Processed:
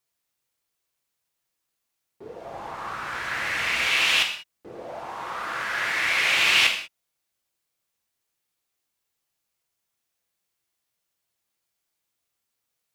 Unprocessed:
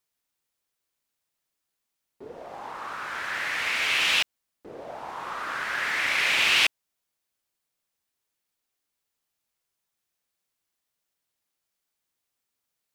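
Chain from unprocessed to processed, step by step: 2.45–3.87 low shelf 160 Hz +11 dB; non-linear reverb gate 0.22 s falling, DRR 2.5 dB

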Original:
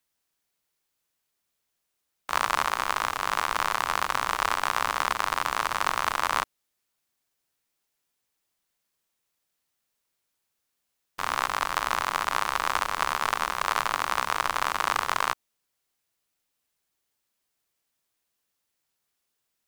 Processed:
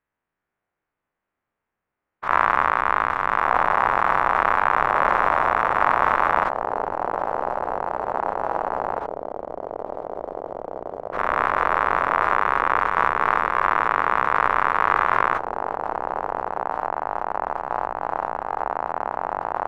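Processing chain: spectral dilation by 0.12 s; LPF 2000 Hz 24 dB/oct; in parallel at -7.5 dB: crossover distortion -32.5 dBFS; on the sum: echoes that change speed 0.397 s, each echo -5 st, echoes 3, each echo -6 dB

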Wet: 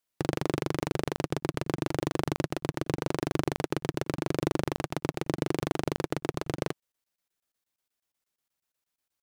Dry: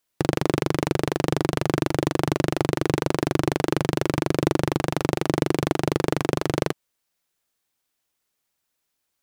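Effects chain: crackling interface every 0.12 s, samples 1024, zero, from 0.8; gain -7 dB

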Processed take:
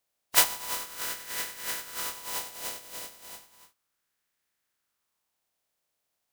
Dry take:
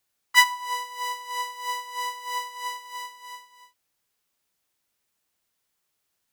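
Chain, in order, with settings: spectral contrast lowered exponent 0.2; LFO bell 0.34 Hz 600–1800 Hz +7 dB; gain -4 dB

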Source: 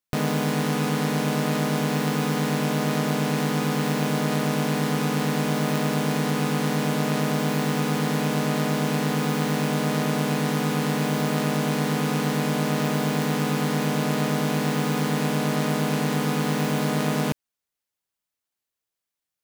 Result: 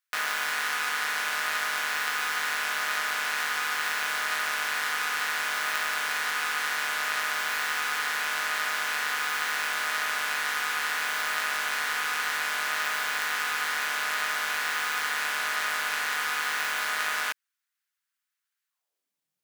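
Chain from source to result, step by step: high-pass sweep 1500 Hz -> 150 Hz, 18.66–19.19

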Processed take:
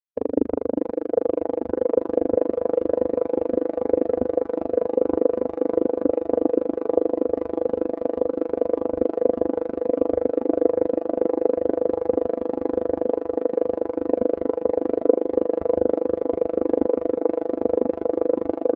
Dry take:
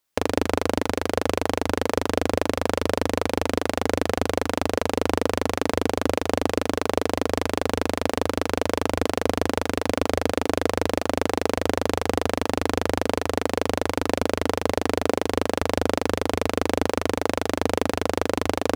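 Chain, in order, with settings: bell 84 Hz -4.5 dB 0.8 oct; feedback echo 0.606 s, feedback 48%, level -9 dB; spectral expander 2.5:1; gain +2 dB

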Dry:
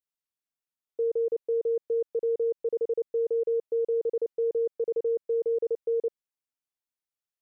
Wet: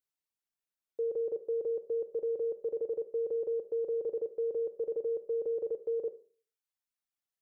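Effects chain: reverb removal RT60 0.82 s; limiter -27.5 dBFS, peak gain reduction 5 dB; on a send: reverb RT60 0.45 s, pre-delay 29 ms, DRR 11.5 dB

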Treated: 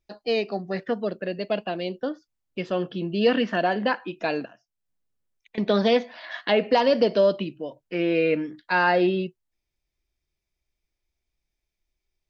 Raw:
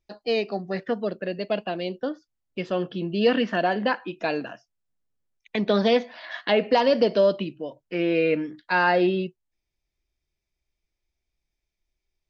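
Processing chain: 4.45–5.58 compressor 2:1, threshold -56 dBFS, peak gain reduction 17.5 dB

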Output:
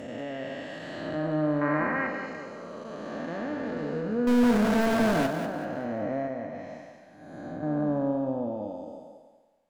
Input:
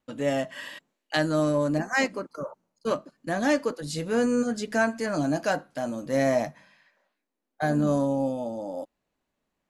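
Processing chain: time blur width 0.621 s; treble ducked by the level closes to 1800 Hz, closed at -28 dBFS; 1.61–2.07 band shelf 1500 Hz +11.5 dB; 4.27–5.27 power-law curve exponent 0.35; 6.27–7.63 compressor 2.5:1, threshold -36 dBFS, peak gain reduction 6 dB; thinning echo 0.193 s, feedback 37%, high-pass 350 Hz, level -8 dB; on a send at -11.5 dB: reverb RT60 0.30 s, pre-delay 4 ms

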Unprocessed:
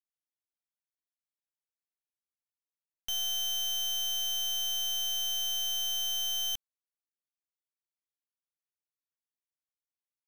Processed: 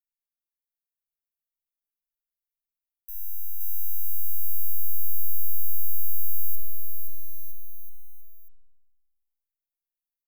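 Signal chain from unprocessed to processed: inverse Chebyshev band-stop 200–2700 Hz, stop band 80 dB; bouncing-ball echo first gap 0.52 s, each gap 0.85×, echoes 5; spring tank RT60 1.2 s, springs 56 ms, chirp 55 ms, DRR -6 dB; gain +4 dB

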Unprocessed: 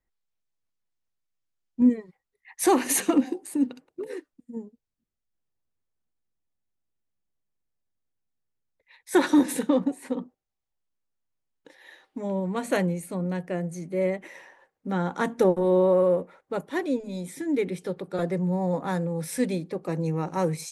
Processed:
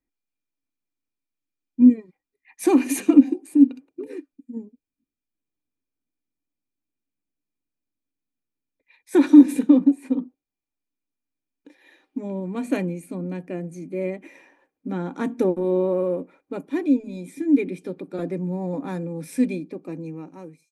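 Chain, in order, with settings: ending faded out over 1.33 s; small resonant body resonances 280/2400 Hz, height 17 dB, ringing for 45 ms; gain -6 dB

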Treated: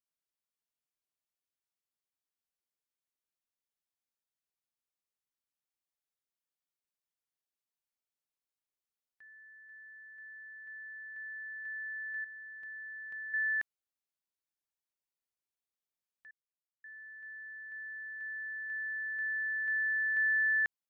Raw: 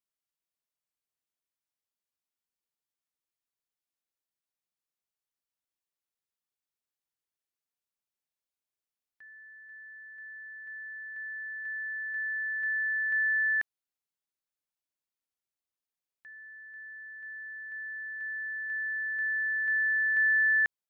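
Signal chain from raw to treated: 12.24–13.34 bell 1700 Hz -10.5 dB 0.77 oct; 16.31–16.84 mute; gain -4.5 dB

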